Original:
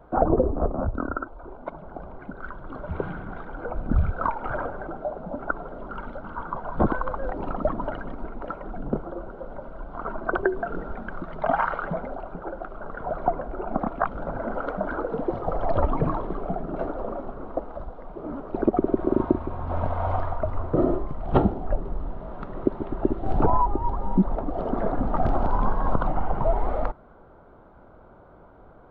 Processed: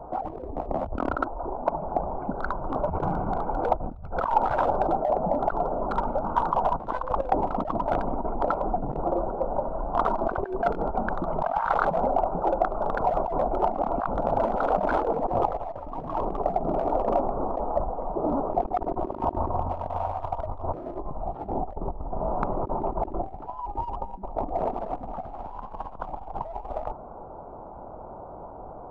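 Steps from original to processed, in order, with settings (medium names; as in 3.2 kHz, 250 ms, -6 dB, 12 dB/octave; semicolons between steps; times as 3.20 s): local Wiener filter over 25 samples; compressor with a negative ratio -33 dBFS, ratio -1; peaking EQ 840 Hz +13 dB 1.1 oct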